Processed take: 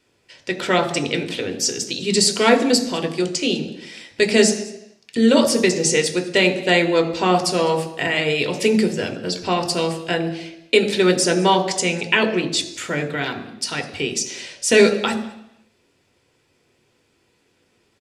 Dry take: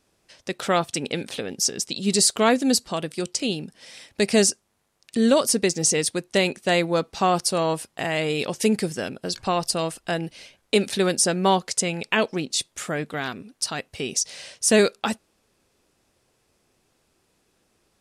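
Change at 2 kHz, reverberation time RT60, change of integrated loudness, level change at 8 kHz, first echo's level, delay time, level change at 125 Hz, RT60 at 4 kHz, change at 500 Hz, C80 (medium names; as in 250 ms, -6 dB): +6.5 dB, 0.85 s, +4.0 dB, 0.0 dB, -22.5 dB, 203 ms, +3.5 dB, 0.85 s, +5.0 dB, 12.5 dB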